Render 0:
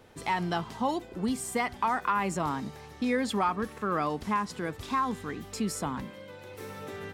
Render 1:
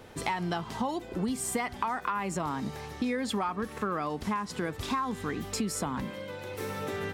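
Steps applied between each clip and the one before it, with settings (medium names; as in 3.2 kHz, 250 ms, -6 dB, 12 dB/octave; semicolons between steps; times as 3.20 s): compression, threshold -34 dBFS, peak gain reduction 11 dB; trim +6 dB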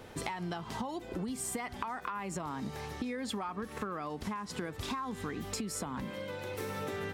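compression, threshold -34 dBFS, peak gain reduction 8.5 dB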